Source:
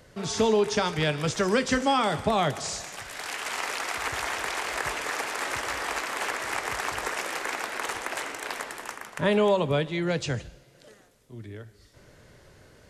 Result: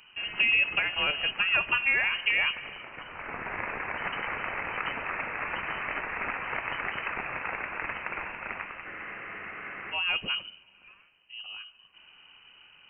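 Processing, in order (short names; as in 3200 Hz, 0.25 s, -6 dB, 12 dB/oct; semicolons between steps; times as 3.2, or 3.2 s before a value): inverted band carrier 3000 Hz; spectral freeze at 8.88, 1.05 s; gain -2 dB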